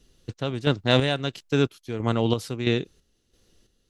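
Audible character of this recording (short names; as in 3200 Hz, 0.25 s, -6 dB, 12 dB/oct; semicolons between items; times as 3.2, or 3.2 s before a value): chopped level 1.5 Hz, depth 60%, duty 50%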